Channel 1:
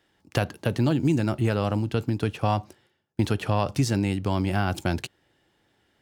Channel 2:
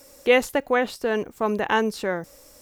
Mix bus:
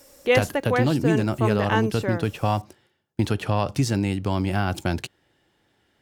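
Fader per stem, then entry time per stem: +1.0, −2.0 decibels; 0.00, 0.00 seconds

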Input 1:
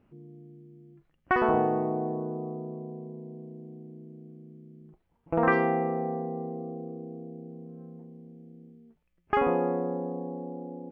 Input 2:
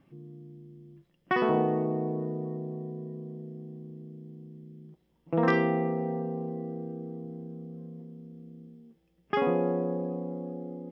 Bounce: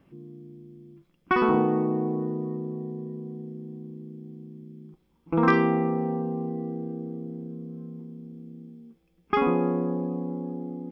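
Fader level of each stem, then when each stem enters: −2.0, +2.0 decibels; 0.00, 0.00 seconds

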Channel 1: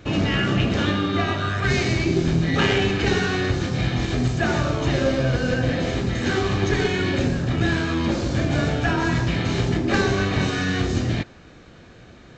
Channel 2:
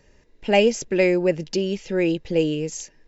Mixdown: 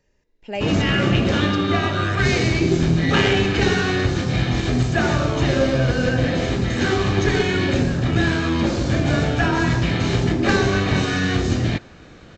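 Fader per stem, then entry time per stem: +2.5, −10.5 decibels; 0.55, 0.00 seconds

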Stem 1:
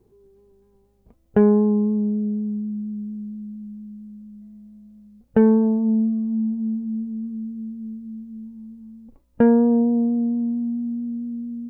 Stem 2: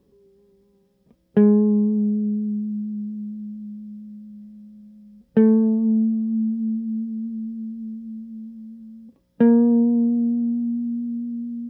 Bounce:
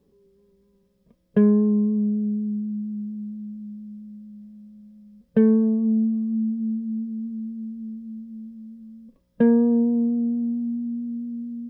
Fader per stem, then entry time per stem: −12.5, −3.0 decibels; 0.00, 0.00 seconds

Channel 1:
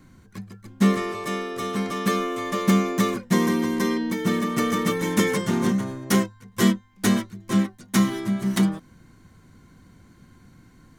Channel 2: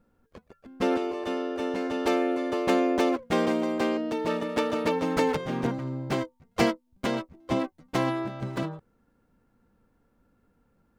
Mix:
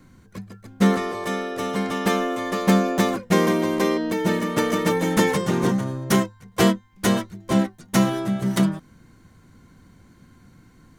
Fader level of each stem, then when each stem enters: 0.0, +1.5 decibels; 0.00, 0.00 seconds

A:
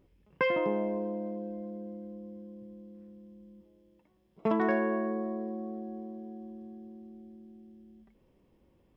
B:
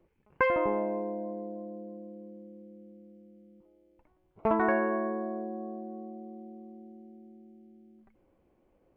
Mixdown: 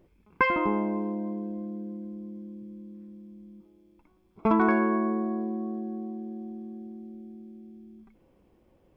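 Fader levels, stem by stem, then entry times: +0.5, +2.0 decibels; 0.00, 0.00 seconds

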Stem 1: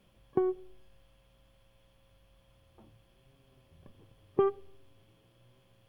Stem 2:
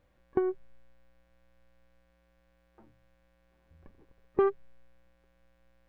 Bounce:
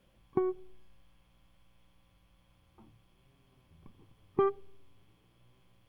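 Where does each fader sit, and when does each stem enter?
−3.0, −4.5 decibels; 0.00, 0.00 seconds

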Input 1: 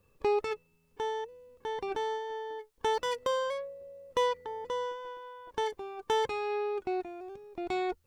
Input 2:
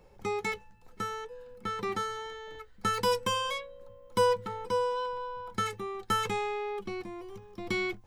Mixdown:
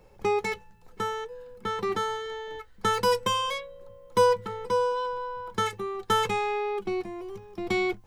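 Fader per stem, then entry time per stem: −1.5, +2.0 decibels; 0.00, 0.00 seconds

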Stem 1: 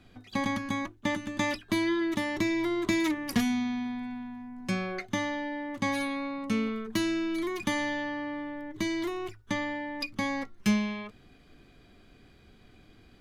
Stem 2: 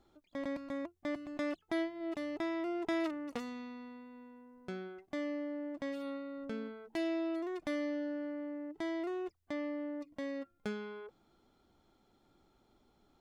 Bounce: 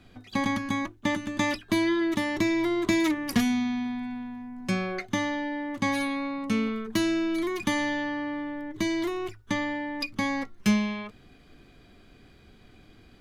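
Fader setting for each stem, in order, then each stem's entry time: +2.5, −8.5 decibels; 0.00, 0.00 seconds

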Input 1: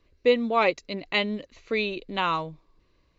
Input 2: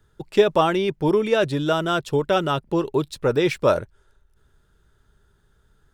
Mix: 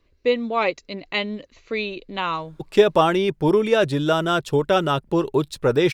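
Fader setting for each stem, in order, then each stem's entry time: +0.5, +1.5 decibels; 0.00, 2.40 seconds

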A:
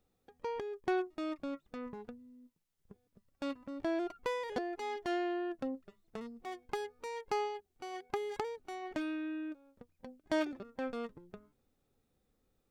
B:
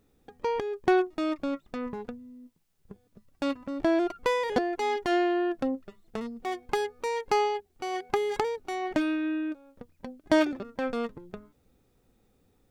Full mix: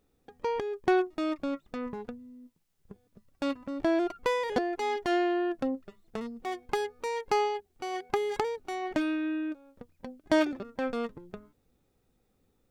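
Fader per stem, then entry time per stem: −0.5, −6.0 decibels; 0.00, 0.00 seconds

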